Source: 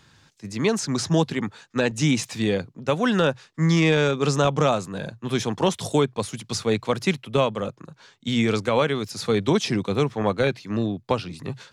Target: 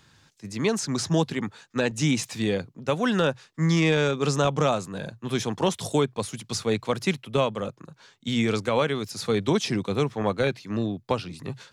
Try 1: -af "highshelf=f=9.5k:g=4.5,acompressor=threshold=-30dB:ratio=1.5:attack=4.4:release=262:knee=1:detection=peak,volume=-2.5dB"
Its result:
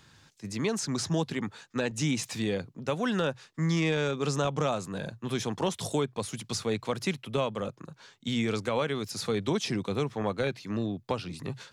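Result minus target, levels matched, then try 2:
compressor: peak gain reduction +6.5 dB
-af "highshelf=f=9.5k:g=4.5,volume=-2.5dB"

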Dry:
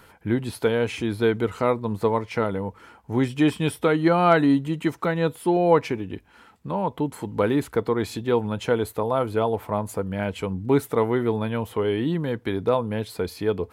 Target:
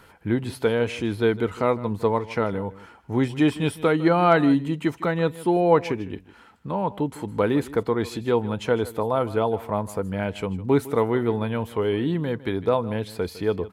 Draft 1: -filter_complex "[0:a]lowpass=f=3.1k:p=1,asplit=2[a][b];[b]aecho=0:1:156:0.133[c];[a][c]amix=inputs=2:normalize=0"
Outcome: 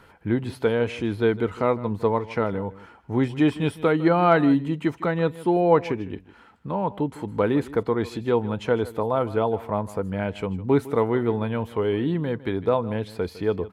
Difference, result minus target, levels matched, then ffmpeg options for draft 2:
8000 Hz band -6.5 dB
-filter_complex "[0:a]lowpass=f=9.4k:p=1,asplit=2[a][b];[b]aecho=0:1:156:0.133[c];[a][c]amix=inputs=2:normalize=0"

